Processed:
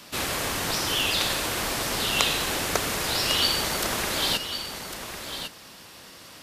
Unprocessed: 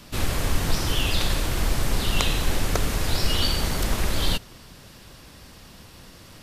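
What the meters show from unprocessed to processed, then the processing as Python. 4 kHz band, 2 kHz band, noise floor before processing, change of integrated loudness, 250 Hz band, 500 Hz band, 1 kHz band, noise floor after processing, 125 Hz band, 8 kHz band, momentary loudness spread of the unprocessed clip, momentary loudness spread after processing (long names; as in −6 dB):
+3.5 dB, +3.5 dB, −47 dBFS, +0.5 dB, −3.5 dB, +0.5 dB, +2.5 dB, −47 dBFS, −10.5 dB, +3.5 dB, 3 LU, 15 LU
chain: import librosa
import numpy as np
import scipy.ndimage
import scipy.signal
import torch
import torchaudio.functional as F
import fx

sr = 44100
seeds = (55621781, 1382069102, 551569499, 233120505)

y = fx.highpass(x, sr, hz=480.0, slope=6)
y = y + 10.0 ** (-9.0 / 20.0) * np.pad(y, (int(1102 * sr / 1000.0), 0))[:len(y)]
y = y * librosa.db_to_amplitude(3.0)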